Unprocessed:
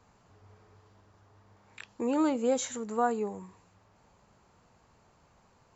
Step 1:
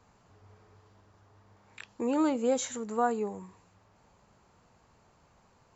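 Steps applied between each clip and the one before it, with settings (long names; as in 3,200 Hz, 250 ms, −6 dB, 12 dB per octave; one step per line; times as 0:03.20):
no processing that can be heard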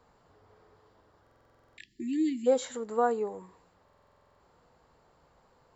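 time-frequency box erased 0:01.48–0:02.47, 390–1,700 Hz
thirty-one-band graphic EQ 100 Hz −11 dB, 200 Hz −7 dB, 500 Hz +5 dB, 2,500 Hz −6 dB, 6,300 Hz −11 dB
buffer that repeats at 0:01.22/0:03.84, samples 2,048, times 11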